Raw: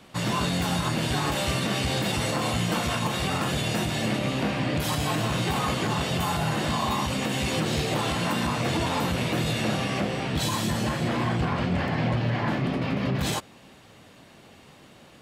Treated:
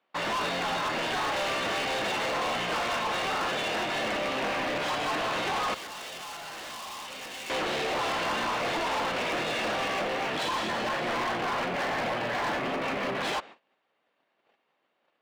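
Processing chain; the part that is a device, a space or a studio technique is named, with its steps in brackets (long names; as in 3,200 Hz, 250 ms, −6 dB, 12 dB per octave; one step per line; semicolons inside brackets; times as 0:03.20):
walkie-talkie (band-pass filter 500–2,700 Hz; hard clipping −33 dBFS, distortion −8 dB; noise gate −51 dBFS, range −26 dB)
0:05.74–0:07.50: first-order pre-emphasis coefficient 0.8
level +6 dB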